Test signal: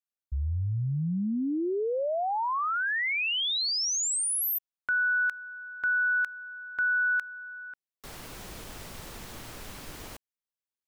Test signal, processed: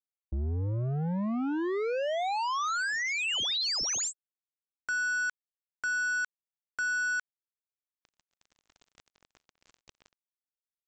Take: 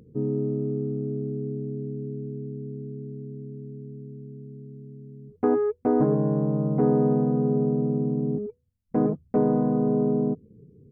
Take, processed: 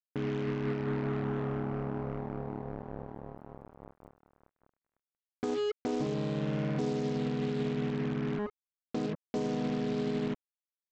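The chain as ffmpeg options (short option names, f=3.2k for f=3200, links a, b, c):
-af "aresample=16000,acrusher=bits=4:mix=0:aa=0.5,aresample=44100,acompressor=threshold=-27dB:ratio=6:attack=0.17:release=111:knee=6:detection=rms"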